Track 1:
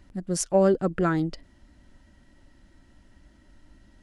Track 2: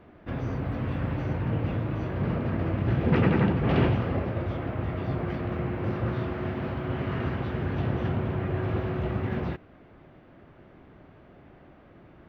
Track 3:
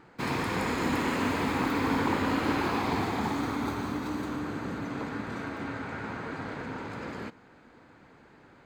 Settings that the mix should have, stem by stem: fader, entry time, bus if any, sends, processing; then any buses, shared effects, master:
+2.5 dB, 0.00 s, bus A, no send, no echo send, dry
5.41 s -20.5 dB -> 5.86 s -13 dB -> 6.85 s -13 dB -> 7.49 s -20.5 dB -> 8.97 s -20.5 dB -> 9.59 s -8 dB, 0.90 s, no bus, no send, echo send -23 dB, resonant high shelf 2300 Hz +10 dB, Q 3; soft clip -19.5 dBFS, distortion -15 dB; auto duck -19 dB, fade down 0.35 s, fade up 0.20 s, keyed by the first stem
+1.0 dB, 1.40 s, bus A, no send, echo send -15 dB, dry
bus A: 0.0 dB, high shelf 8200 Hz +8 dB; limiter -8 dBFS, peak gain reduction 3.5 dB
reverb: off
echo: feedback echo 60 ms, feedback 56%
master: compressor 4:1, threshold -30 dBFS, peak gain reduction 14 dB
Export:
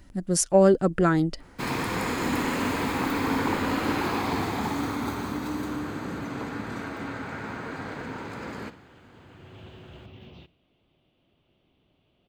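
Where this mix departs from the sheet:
stem 2 -20.5 dB -> -29.5 dB; master: missing compressor 4:1, threshold -30 dBFS, peak gain reduction 14 dB

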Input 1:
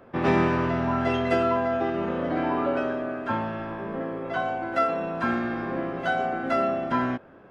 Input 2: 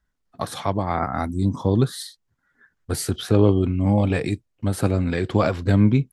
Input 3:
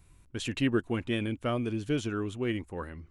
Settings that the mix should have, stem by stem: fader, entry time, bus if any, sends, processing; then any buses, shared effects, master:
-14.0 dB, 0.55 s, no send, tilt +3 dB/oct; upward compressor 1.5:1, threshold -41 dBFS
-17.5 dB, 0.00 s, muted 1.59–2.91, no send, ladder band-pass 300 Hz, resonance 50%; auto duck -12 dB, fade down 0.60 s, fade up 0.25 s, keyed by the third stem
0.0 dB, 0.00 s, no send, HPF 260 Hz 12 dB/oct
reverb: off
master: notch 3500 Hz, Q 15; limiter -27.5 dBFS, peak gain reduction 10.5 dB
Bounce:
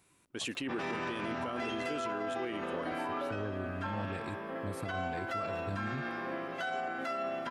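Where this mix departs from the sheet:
stem 1 -14.0 dB -> -5.5 dB; stem 2: missing ladder band-pass 300 Hz, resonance 50%; master: missing notch 3500 Hz, Q 15

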